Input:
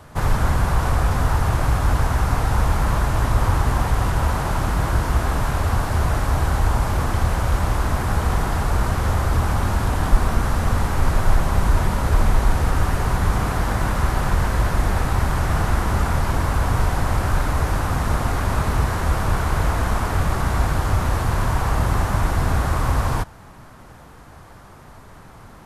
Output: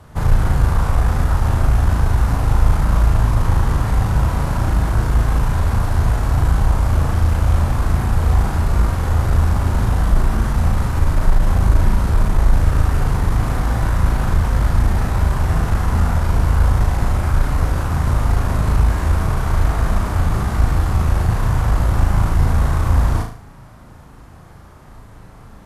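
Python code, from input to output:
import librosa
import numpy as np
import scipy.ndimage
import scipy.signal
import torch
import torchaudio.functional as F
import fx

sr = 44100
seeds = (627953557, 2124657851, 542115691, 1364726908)

p1 = fx.low_shelf(x, sr, hz=230.0, db=7.5)
p2 = fx.tube_stage(p1, sr, drive_db=3.0, bias=0.45)
p3 = p2 + fx.room_flutter(p2, sr, wall_m=6.3, rt60_s=0.47, dry=0)
y = p3 * librosa.db_to_amplitude(-2.0)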